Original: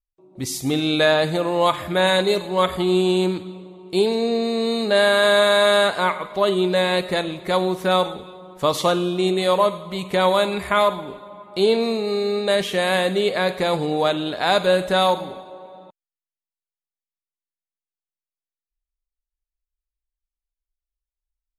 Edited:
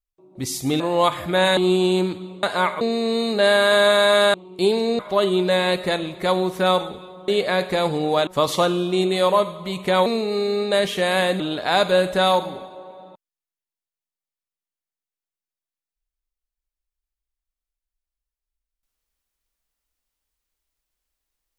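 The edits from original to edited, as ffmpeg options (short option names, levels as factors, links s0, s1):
-filter_complex "[0:a]asplit=11[s0][s1][s2][s3][s4][s5][s6][s7][s8][s9][s10];[s0]atrim=end=0.802[s11];[s1]atrim=start=1.418:end=2.192[s12];[s2]atrim=start=2.818:end=3.682[s13];[s3]atrim=start=5.858:end=6.242[s14];[s4]atrim=start=4.328:end=5.862[s15];[s5]atrim=start=3.678:end=4.332[s16];[s6]atrim=start=6.238:end=8.532[s17];[s7]atrim=start=13.158:end=14.152[s18];[s8]atrim=start=8.528:end=10.322[s19];[s9]atrim=start=11.818:end=13.162[s20];[s10]atrim=start=14.148[s21];[s11][s12]acrossfade=d=0.004:c1=hsin:c2=hsin[s22];[s22][s13]acrossfade=d=0.004:c1=hsin:c2=hsin[s23];[s23][s14]acrossfade=d=0.004:c1=hsin:c2=hsin[s24];[s24][s15]acrossfade=d=0.004:c1=hsin:c2=hsin[s25];[s25][s16]acrossfade=d=0.004:c1=hsin:c2=hsin[s26];[s26][s17]acrossfade=d=0.004:c1=hsin:c2=hsin[s27];[s27][s18]acrossfade=d=0.004:c1=hsin:c2=hsin[s28];[s28][s19]acrossfade=d=0.004:c1=hsin:c2=hsin[s29];[s29][s20]acrossfade=d=0.004:c1=hsin:c2=hsin[s30];[s30][s21]acrossfade=d=0.004:c1=hsin:c2=hsin"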